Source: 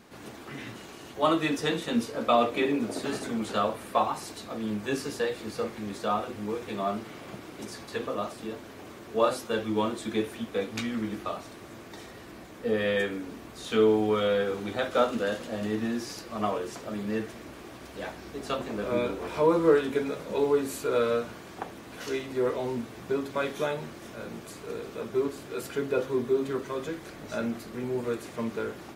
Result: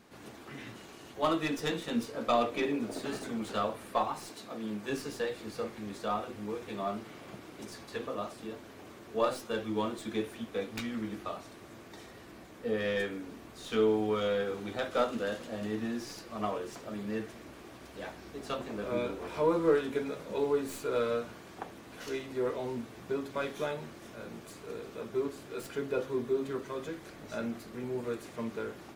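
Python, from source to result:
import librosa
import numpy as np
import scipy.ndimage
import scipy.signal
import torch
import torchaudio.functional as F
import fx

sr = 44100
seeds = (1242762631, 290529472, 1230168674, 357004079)

y = fx.tracing_dist(x, sr, depth_ms=0.064)
y = fx.highpass(y, sr, hz=140.0, slope=12, at=(4.29, 4.9))
y = y * 10.0 ** (-5.0 / 20.0)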